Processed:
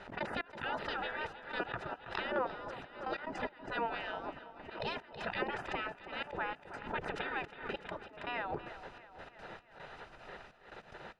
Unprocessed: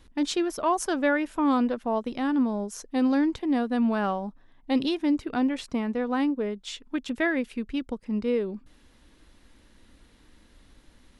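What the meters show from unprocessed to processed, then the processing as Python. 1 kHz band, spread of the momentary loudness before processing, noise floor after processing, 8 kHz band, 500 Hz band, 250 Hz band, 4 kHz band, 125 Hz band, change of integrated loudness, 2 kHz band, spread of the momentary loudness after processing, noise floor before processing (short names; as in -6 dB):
-7.5 dB, 8 LU, -59 dBFS, under -25 dB, -11.5 dB, -23.0 dB, -7.0 dB, n/a, -13.0 dB, -4.5 dB, 14 LU, -58 dBFS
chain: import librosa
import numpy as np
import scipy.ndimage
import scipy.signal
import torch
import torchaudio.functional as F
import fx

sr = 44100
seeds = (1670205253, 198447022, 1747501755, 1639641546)

p1 = fx.over_compress(x, sr, threshold_db=-35.0, ratio=-1.0)
p2 = x + (p1 * librosa.db_to_amplitude(-1.0))
p3 = fx.spec_gate(p2, sr, threshold_db=-25, keep='weak')
p4 = fx.notch_comb(p3, sr, f0_hz=1100.0)
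p5 = fx.dmg_noise_colour(p4, sr, seeds[0], colour='pink', level_db=-71.0)
p6 = fx.step_gate(p5, sr, bpm=147, pattern='x.xx..xxxxxxx..', floor_db=-24.0, edge_ms=4.5)
p7 = scipy.signal.sosfilt(scipy.signal.butter(2, 1500.0, 'lowpass', fs=sr, output='sos'), p6)
p8 = p7 + fx.echo_feedback(p7, sr, ms=324, feedback_pct=55, wet_db=-14.5, dry=0)
p9 = fx.pre_swell(p8, sr, db_per_s=110.0)
y = p9 * librosa.db_to_amplitude(12.5)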